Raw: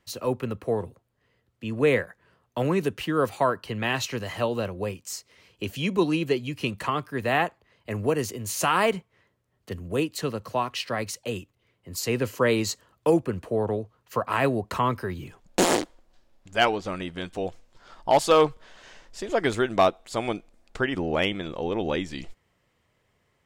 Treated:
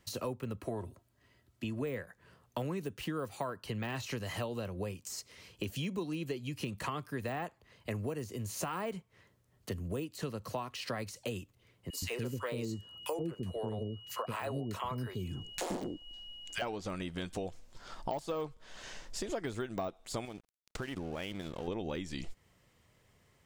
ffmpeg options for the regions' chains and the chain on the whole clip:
-filter_complex "[0:a]asettb=1/sr,asplit=3[s0][s1][s2];[s0]atrim=end=0.604[s3];[s1]atrim=start=0.6:end=1.82,asetpts=PTS-STARTPTS,afade=t=in:d=0.004:c=qsin,afade=t=out:st=1.216:d=0.004:c=qsin,highpass=47,bandreject=f=480:w=7.1,aecho=1:1:3.1:0.37,atrim=end_sample=53802[s4];[s2]atrim=start=1.816[s5];[s3][s4]acrossfade=d=0.004:c1=hsin:c2=qsin[s6];[s6][s5]acrossfade=d=0.004:c1=qsin:c2=hsin,asettb=1/sr,asplit=3[s7][s8][s9];[s7]atrim=end=11.904[s10];[s8]atrim=start=11.9:end=16.62,asetpts=PTS-STARTPTS,afade=t=in:d=0.004:c=qsin,afade=t=out:st=4.716:d=0.004:c=qsin,aeval=exprs='val(0)+0.00398*sin(2*PI*2900*n/s)':c=same,acrossover=split=430|1500[s11][s12][s13];[s12]adelay=30[s14];[s11]adelay=120[s15];[s15][s14][s13]amix=inputs=3:normalize=0,atrim=end_sample=208152[s16];[s9]atrim=start=16.616[s17];[s10][s16]acrossfade=d=0.004:c1=hsin:c2=qsin[s18];[s18][s17]acrossfade=d=0.004:c1=qsin:c2=hsin,asettb=1/sr,asplit=3[s19][s20][s21];[s19]atrim=end=20.254[s22];[s20]atrim=start=20.25:end=21.68,asetpts=PTS-STARTPTS,afade=t=in:d=0.004:c=qsin,afade=t=out:st=1.426:d=0.004:c=qsin,acompressor=threshold=0.0141:ratio=2.5:attack=3.2:release=140:knee=1:detection=peak,aeval=exprs='sgn(val(0))*max(abs(val(0))-0.00335,0)':c=same[s23];[s21]atrim=start=21.676[s24];[s22][s23]acrossfade=d=0.004:c1=hsin:c2=qsin[s25];[s25][s24]acrossfade=d=0.004:c1=qsin:c2=hsin,deesser=0.95,bass=f=250:g=4,treble=f=4000:g=6,acompressor=threshold=0.0178:ratio=6"

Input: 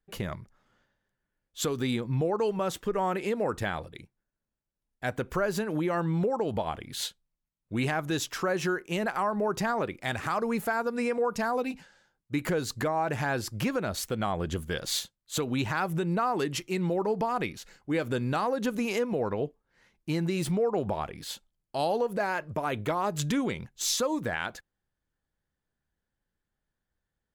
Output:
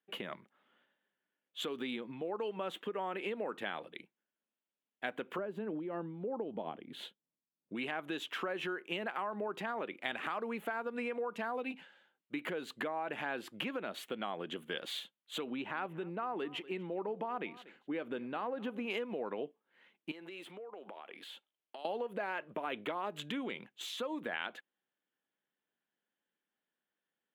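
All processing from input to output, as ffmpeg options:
-filter_complex "[0:a]asettb=1/sr,asplit=3[s0][s1][s2];[s0]atrim=end=5.384[s3];[s1]atrim=start=5.38:end=7.75,asetpts=PTS-STARTPTS,afade=t=in:d=0.004:c=qsin,afade=t=out:st=2.366:d=0.004:c=qsin,tiltshelf=f=750:g=9,tremolo=f=3.1:d=0.54[s4];[s2]atrim=start=7.746[s5];[s3][s4]acrossfade=d=0.004:c1=hsin:c2=qsin[s6];[s6][s5]acrossfade=d=0.004:c1=qsin:c2=hsin,asettb=1/sr,asplit=3[s7][s8][s9];[s7]atrim=end=15.504[s10];[s8]atrim=start=15.5:end=18.9,asetpts=PTS-STARTPTS,afade=t=in:d=0.004:c=qsin,afade=t=out:st=3.396:d=0.004:c=qsin,highshelf=f=2700:g=-10.5,aecho=1:1:240:0.075,atrim=end_sample=149940[s11];[s9]atrim=start=18.896[s12];[s10][s11]acrossfade=d=0.004:c1=hsin:c2=qsin[s13];[s13][s12]acrossfade=d=0.004:c1=qsin:c2=hsin,asettb=1/sr,asplit=3[s14][s15][s16];[s14]atrim=end=20.114[s17];[s15]atrim=start=20.11:end=21.85,asetpts=PTS-STARTPTS,afade=t=in:d=0.004:c=qsin,afade=t=out:st=1.736:d=0.004:c=qsin,highpass=360,acompressor=threshold=0.01:ratio=20:attack=3.2:release=140:knee=1:detection=peak[s18];[s16]atrim=start=21.846[s19];[s17][s18]acrossfade=d=0.004:c1=hsin:c2=qsin[s20];[s20][s19]acrossfade=d=0.004:c1=qsin:c2=hsin,acompressor=threshold=0.0282:ratio=6,highpass=f=220:w=0.5412,highpass=f=220:w=1.3066,highshelf=f=4100:t=q:w=3:g=-9.5,volume=0.668"

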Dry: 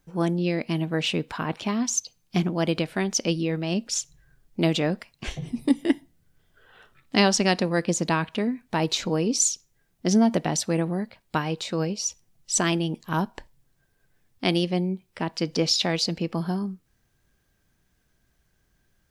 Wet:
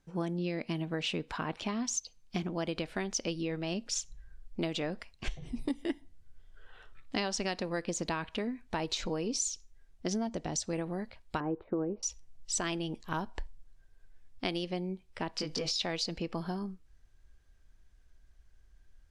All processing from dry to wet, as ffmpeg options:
-filter_complex "[0:a]asettb=1/sr,asplit=3[s0][s1][s2];[s0]atrim=end=10.274[s3];[s1]atrim=start=10.27:end=10.73,asetpts=PTS-STARTPTS,afade=t=in:d=0.004:c=qsin,afade=t=out:st=0.456:d=0.004:c=qsin,lowpass=f=7100:t=q:w=1.8,equalizer=f=1900:w=0.33:g=-7.5[s4];[s2]atrim=start=10.726[s5];[s3][s4]acrossfade=d=0.004:c1=hsin:c2=qsin[s6];[s6][s5]acrossfade=d=0.004:c1=qsin:c2=hsin,asettb=1/sr,asplit=3[s7][s8][s9];[s7]atrim=end=11.404[s10];[s8]atrim=start=11.4:end=12.03,asetpts=PTS-STARTPTS,afade=t=in:d=0.004:c=qsin,afade=t=out:st=0.626:d=0.004:c=qsin,lowpass=f=1400:w=0.5412,lowpass=f=1400:w=1.3066,agate=range=0.0224:threshold=0.00501:ratio=3:release=100:detection=peak,equalizer=f=340:w=1.5:g=10.5[s11];[s9]atrim=start=12.026[s12];[s10][s11]acrossfade=d=0.004:c1=hsin:c2=qsin[s13];[s13][s12]acrossfade=d=0.004:c1=qsin:c2=hsin,asettb=1/sr,asplit=3[s14][s15][s16];[s14]atrim=end=15.364[s17];[s15]atrim=start=15.36:end=15.76,asetpts=PTS-STARTPTS,afade=t=in:d=0.004:c=qsin,afade=t=out:st=0.396:d=0.004:c=qsin,highshelf=f=9500:g=5,acompressor=threshold=0.0631:ratio=6:attack=3.2:release=140:knee=1:detection=peak,asplit=2[s18][s19];[s19]adelay=20,volume=0.794[s20];[s18][s20]amix=inputs=2:normalize=0,atrim=end_sample=17640[s21];[s16]atrim=start=15.756[s22];[s17][s21]acrossfade=d=0.004:c1=hsin:c2=qsin[s23];[s23][s22]acrossfade=d=0.004:c1=qsin:c2=hsin,lowpass=8700,asubboost=boost=9.5:cutoff=50,acompressor=threshold=0.0501:ratio=5,volume=0.631"

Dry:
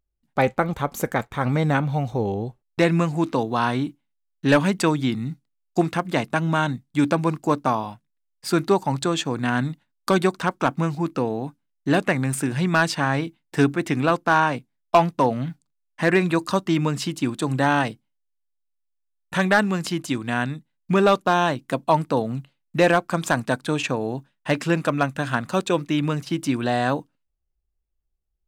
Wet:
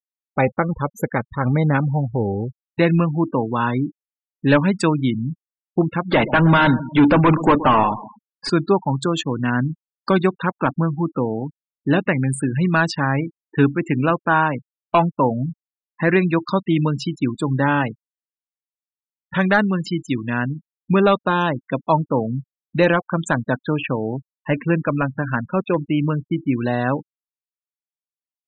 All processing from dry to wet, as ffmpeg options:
-filter_complex "[0:a]asettb=1/sr,asplit=3[s0][s1][s2];[s0]atrim=end=6.114[s3];[s1]atrim=start=6.11:end=8.5,asetpts=PTS-STARTPTS,afade=t=in:d=0.004:c=qsin,afade=t=out:st=2.386:d=0.004:c=qsin,asplit=2[s4][s5];[s5]highpass=f=720:p=1,volume=22.4,asoftclip=type=tanh:threshold=0.447[s6];[s4][s6]amix=inputs=2:normalize=0,lowpass=f=1700:p=1,volume=0.501,asplit=2[s7][s8];[s8]adelay=124,lowpass=f=1400:p=1,volume=0.2,asplit=2[s9][s10];[s10]adelay=124,lowpass=f=1400:p=1,volume=0.52,asplit=2[s11][s12];[s12]adelay=124,lowpass=f=1400:p=1,volume=0.52,asplit=2[s13][s14];[s14]adelay=124,lowpass=f=1400:p=1,volume=0.52,asplit=2[s15][s16];[s16]adelay=124,lowpass=f=1400:p=1,volume=0.52[s17];[s7][s9][s11][s13][s15][s17]amix=inputs=6:normalize=0,atrim=end_sample=105399[s18];[s2]atrim=start=8.496[s19];[s3][s18]acrossfade=d=0.004:c1=hsin:c2=qsin[s20];[s20][s19]acrossfade=d=0.004:c1=qsin:c2=hsin,asettb=1/sr,asplit=3[s21][s22][s23];[s21]atrim=end=23.664[s24];[s22]atrim=start=23.66:end=26.64,asetpts=PTS-STARTPTS,afade=t=in:d=0.004:c=qsin,afade=t=out:st=2.976:d=0.004:c=qsin,lowpass=f=3100:w=0.5412,lowpass=f=3100:w=1.3066,asoftclip=type=hard:threshold=0.299[s25];[s23]atrim=start=26.636[s26];[s24][s25]acrossfade=d=0.004:c1=hsin:c2=qsin[s27];[s27][s26]acrossfade=d=0.004:c1=qsin:c2=hsin,bandreject=f=710:w=12,afftfilt=real='re*gte(hypot(re,im),0.0501)':imag='im*gte(hypot(re,im),0.0501)':win_size=1024:overlap=0.75,bass=f=250:g=3,treble=f=4000:g=-1,volume=1.19"

